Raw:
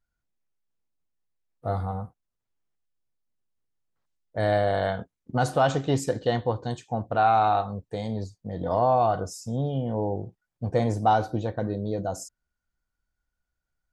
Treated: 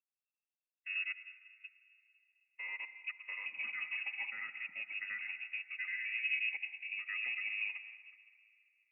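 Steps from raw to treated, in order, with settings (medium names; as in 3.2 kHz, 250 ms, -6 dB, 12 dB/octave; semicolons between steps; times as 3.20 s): slices played last to first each 135 ms, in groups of 5; peak limiter -22 dBFS, peak gain reduction 11 dB; peaking EQ 1.2 kHz -7 dB 1.2 oct; time stretch by phase-locked vocoder 0.64×; comb of notches 260 Hz; algorithmic reverb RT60 2.8 s, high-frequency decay 0.4×, pre-delay 55 ms, DRR 7.5 dB; frequency inversion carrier 2.7 kHz; high-pass 140 Hz 24 dB/octave; upward expansion 1.5:1, over -49 dBFS; trim -4.5 dB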